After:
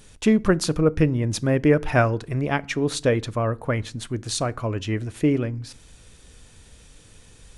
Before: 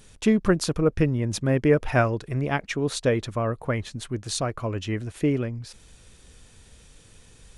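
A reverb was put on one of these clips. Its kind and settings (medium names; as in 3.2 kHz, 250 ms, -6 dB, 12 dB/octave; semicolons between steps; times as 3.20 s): FDN reverb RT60 0.43 s, low-frequency decay 1.6×, high-frequency decay 0.75×, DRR 18 dB; trim +2 dB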